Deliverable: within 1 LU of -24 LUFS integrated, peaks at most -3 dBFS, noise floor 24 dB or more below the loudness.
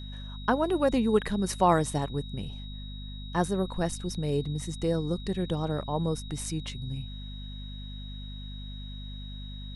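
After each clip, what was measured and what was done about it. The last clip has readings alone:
hum 50 Hz; harmonics up to 250 Hz; hum level -37 dBFS; steady tone 3800 Hz; tone level -46 dBFS; loudness -29.5 LUFS; peak -11.0 dBFS; loudness target -24.0 LUFS
-> de-hum 50 Hz, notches 5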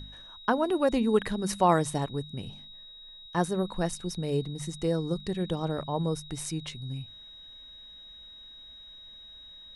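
hum none; steady tone 3800 Hz; tone level -46 dBFS
-> notch 3800 Hz, Q 30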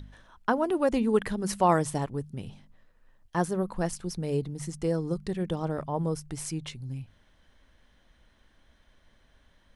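steady tone none; loudness -30.0 LUFS; peak -11.5 dBFS; loudness target -24.0 LUFS
-> gain +6 dB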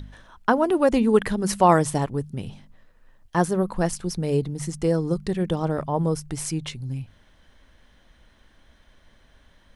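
loudness -24.0 LUFS; peak -5.5 dBFS; noise floor -58 dBFS

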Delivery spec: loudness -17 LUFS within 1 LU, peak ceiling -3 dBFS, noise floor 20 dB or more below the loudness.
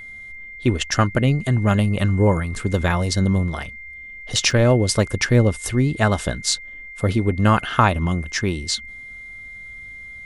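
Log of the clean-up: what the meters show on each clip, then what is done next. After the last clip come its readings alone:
dropouts 1; longest dropout 3.2 ms; steady tone 2100 Hz; tone level -35 dBFS; loudness -20.0 LUFS; peak -1.0 dBFS; loudness target -17.0 LUFS
-> interpolate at 4.51, 3.2 ms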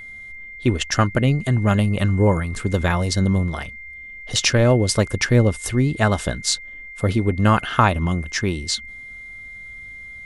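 dropouts 0; steady tone 2100 Hz; tone level -35 dBFS
-> notch 2100 Hz, Q 30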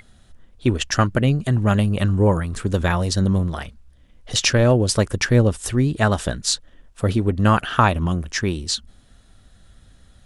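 steady tone none; loudness -20.0 LUFS; peak -1.0 dBFS; loudness target -17.0 LUFS
-> gain +3 dB; limiter -3 dBFS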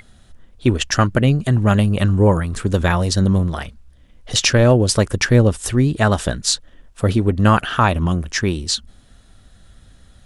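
loudness -17.5 LUFS; peak -3.0 dBFS; noise floor -50 dBFS

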